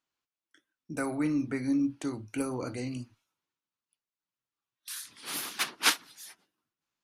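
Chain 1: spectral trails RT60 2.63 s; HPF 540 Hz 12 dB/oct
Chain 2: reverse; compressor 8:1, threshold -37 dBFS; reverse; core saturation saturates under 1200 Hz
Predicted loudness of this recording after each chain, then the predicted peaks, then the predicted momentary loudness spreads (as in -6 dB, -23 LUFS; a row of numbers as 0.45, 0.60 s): -27.0, -43.0 LUFS; -7.0, -24.0 dBFS; 19, 9 LU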